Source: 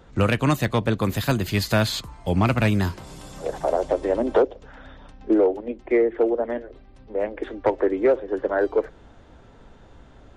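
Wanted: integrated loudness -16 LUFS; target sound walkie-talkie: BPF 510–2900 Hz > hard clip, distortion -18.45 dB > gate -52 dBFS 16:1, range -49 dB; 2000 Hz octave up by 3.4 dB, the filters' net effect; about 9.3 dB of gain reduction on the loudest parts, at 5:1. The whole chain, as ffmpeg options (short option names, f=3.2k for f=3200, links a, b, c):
-af "equalizer=f=2k:t=o:g=5.5,acompressor=threshold=-25dB:ratio=5,highpass=510,lowpass=2.9k,asoftclip=type=hard:threshold=-23dB,agate=range=-49dB:threshold=-52dB:ratio=16,volume=18.5dB"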